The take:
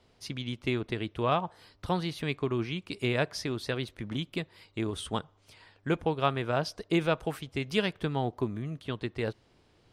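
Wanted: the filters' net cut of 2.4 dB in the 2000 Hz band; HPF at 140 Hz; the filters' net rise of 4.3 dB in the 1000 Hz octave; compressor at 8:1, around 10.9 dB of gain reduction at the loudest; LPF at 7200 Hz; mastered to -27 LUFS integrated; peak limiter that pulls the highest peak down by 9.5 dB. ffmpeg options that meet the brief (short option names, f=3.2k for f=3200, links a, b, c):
-af "highpass=140,lowpass=7.2k,equalizer=f=1k:t=o:g=7,equalizer=f=2k:t=o:g=-5.5,acompressor=threshold=-30dB:ratio=8,volume=13dB,alimiter=limit=-13.5dB:level=0:latency=1"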